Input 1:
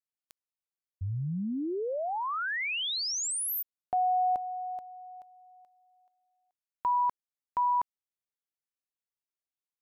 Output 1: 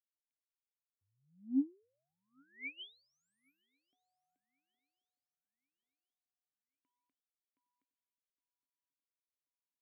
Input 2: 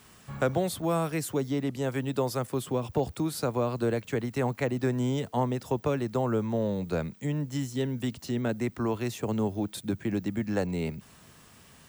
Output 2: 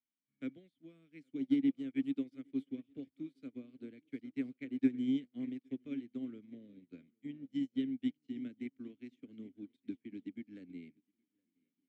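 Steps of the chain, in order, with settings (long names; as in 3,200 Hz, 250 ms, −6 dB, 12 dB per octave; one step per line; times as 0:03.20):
formant filter i
feedback echo with a long and a short gap by turns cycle 1,085 ms, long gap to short 3 to 1, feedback 42%, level −15 dB
expander for the loud parts 2.5 to 1, over −55 dBFS
level +6 dB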